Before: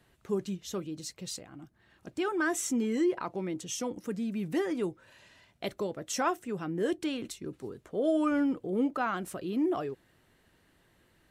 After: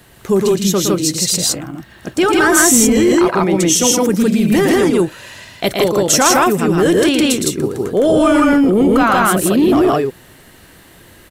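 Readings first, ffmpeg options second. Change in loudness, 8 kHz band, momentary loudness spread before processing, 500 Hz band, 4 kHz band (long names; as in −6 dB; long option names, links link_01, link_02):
+19.5 dB, +25.5 dB, 12 LU, +19.0 dB, +23.5 dB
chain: -af "aecho=1:1:113.7|160.3:0.501|1,apsyclip=25.5dB,crystalizer=i=1:c=0,volume=-7dB"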